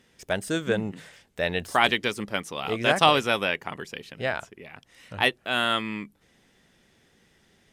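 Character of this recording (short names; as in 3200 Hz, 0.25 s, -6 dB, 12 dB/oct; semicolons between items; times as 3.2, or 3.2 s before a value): noise floor -64 dBFS; spectral tilt -4.0 dB/oct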